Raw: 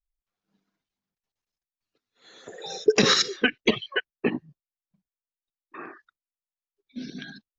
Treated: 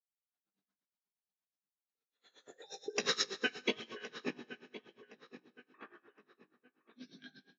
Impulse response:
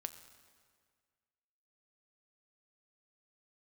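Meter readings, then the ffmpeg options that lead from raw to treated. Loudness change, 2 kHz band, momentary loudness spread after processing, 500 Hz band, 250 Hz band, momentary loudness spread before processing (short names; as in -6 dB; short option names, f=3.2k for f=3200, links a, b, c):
-14.0 dB, -12.0 dB, 23 LU, -16.0 dB, -16.5 dB, 22 LU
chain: -filter_complex "[0:a]highpass=f=300:p=1,asplit=2[a][b];[b]adelay=1066,lowpass=f=2.8k:p=1,volume=-15dB,asplit=2[c][d];[d]adelay=1066,lowpass=f=2.8k:p=1,volume=0.37,asplit=2[e][f];[f]adelay=1066,lowpass=f=2.8k:p=1,volume=0.37[g];[a][c][e][g]amix=inputs=4:normalize=0[h];[1:a]atrim=start_sample=2205,asetrate=27783,aresample=44100[i];[h][i]afir=irnorm=-1:irlink=0,flanger=delay=17:depth=4.6:speed=1,aeval=exprs='val(0)*pow(10,-20*(0.5-0.5*cos(2*PI*8.4*n/s))/20)':c=same,volume=-5dB"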